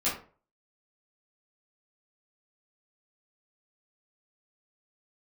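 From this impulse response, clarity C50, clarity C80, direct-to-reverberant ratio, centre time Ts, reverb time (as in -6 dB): 6.0 dB, 11.5 dB, -10.0 dB, 34 ms, 0.40 s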